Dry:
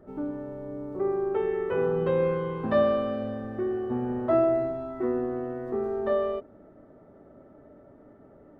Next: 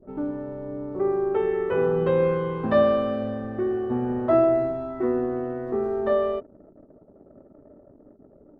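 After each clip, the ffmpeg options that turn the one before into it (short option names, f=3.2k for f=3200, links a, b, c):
-af "anlmdn=0.00631,volume=3.5dB"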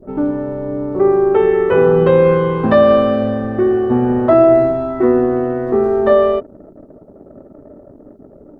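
-af "alimiter=level_in=12.5dB:limit=-1dB:release=50:level=0:latency=1,volume=-1dB"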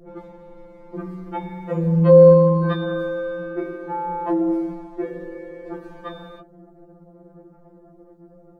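-af "afftfilt=real='re*2.83*eq(mod(b,8),0)':imag='im*2.83*eq(mod(b,8),0)':win_size=2048:overlap=0.75,volume=-2.5dB"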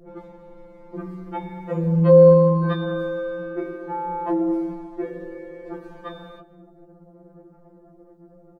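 -af "aecho=1:1:224|448:0.0794|0.023,volume=-1.5dB"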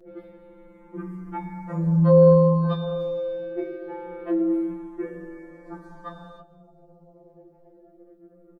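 -filter_complex "[0:a]asplit=2[a][b];[b]adelay=5.8,afreqshift=-0.25[c];[a][c]amix=inputs=2:normalize=1"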